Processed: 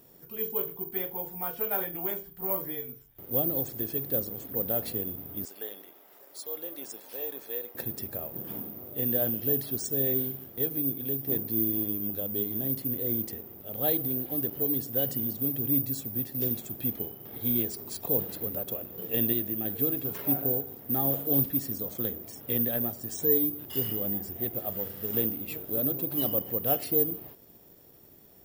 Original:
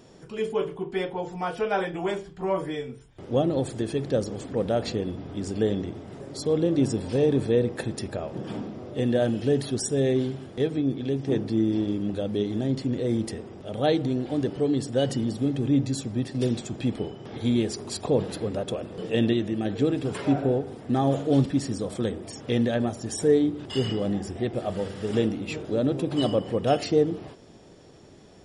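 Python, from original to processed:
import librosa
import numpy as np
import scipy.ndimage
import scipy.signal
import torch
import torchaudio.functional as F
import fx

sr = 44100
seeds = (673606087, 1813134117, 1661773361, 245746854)

y = fx.highpass(x, sr, hz=740.0, slope=12, at=(5.45, 7.75))
y = (np.kron(y[::3], np.eye(3)[0]) * 3)[:len(y)]
y = y * librosa.db_to_amplitude(-9.0)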